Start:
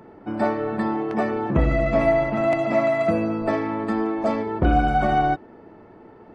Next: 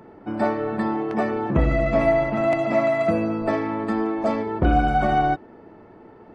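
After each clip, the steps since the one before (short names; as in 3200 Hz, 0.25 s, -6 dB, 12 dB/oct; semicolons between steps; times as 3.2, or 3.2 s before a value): nothing audible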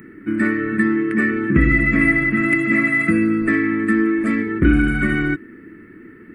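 EQ curve 110 Hz 0 dB, 320 Hz +7 dB, 790 Hz -29 dB, 1200 Hz -2 dB, 1900 Hz +14 dB, 3500 Hz -6 dB, 5900 Hz -10 dB, 9000 Hz +14 dB; gain +2.5 dB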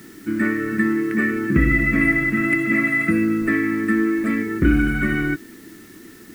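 requantised 8-bit, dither triangular; gain -2 dB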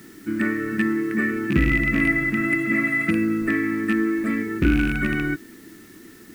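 rattling part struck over -19 dBFS, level -16 dBFS; gain -2.5 dB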